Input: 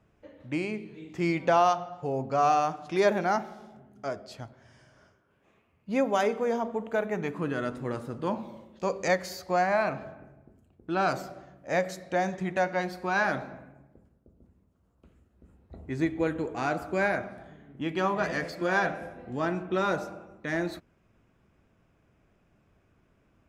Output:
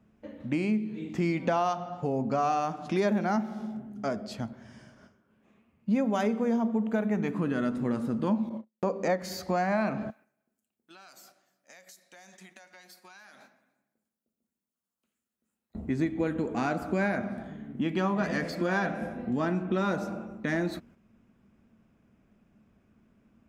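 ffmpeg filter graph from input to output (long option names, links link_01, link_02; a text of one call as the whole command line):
ffmpeg -i in.wav -filter_complex "[0:a]asettb=1/sr,asplit=3[link_01][link_02][link_03];[link_01]atrim=end=8.494[link_04];[link_02]atrim=start=8.49:end=9.22,asetpts=PTS-STARTPTS,afade=type=in:duration=0.004:curve=qsin,afade=type=out:start_time=0.726:duration=0.004:curve=qsin,highpass=frequency=620:poles=1,tiltshelf=frequency=1400:gain=9,agate=range=-43dB:threshold=-46dB:ratio=16:release=100:detection=peak[link_05];[link_03]atrim=start=9.216[link_06];[link_04][link_05]acrossfade=duration=0.004:curve1=hsin:curve2=qsin[link_07];[link_07][link_06]acrossfade=duration=0.004:curve1=qsin:curve2=hsin,asettb=1/sr,asplit=3[link_08][link_09][link_10];[link_08]atrim=end=10.104[link_11];[link_09]atrim=start=10.1:end=15.75,asetpts=PTS-STARTPTS,afade=type=in:duration=0.004:curve=qsin,afade=type=out:start_time=5.646:duration=0.004:curve=qsin,aderivative,acompressor=threshold=-51dB:ratio=16:attack=3.2:release=140:knee=1:detection=peak,aecho=1:1:293:0.0944,atrim=end_sample=249165[link_12];[link_10]atrim=start=15.746[link_13];[link_11][link_12]acrossfade=duration=0.004:curve1=hsin:curve2=qsin[link_14];[link_14][link_13]acrossfade=duration=0.004:curve1=qsin:curve2=hsin,agate=range=-6dB:threshold=-59dB:ratio=16:detection=peak,equalizer=frequency=220:width_type=o:width=0.47:gain=14.5,acompressor=threshold=-31dB:ratio=2.5,volume=3.5dB" out.wav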